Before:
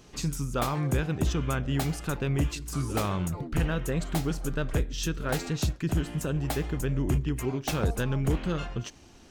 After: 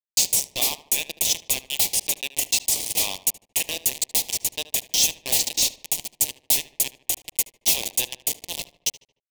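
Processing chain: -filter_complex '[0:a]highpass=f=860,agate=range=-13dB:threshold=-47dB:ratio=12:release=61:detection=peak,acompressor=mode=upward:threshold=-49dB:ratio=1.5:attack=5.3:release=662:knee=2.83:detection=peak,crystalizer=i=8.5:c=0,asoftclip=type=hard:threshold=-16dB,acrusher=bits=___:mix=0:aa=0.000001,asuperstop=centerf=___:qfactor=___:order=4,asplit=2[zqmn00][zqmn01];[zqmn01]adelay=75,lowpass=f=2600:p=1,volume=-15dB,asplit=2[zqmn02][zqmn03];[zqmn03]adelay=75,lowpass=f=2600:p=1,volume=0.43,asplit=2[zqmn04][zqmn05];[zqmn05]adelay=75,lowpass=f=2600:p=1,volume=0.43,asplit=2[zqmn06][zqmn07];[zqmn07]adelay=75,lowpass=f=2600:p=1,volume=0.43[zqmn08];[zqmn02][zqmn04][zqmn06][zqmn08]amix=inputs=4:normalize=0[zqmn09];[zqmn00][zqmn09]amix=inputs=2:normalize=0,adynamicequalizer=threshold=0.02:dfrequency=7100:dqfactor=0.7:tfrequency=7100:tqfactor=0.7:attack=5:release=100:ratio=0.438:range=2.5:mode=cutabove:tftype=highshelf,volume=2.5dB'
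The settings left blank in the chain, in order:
3, 1400, 0.93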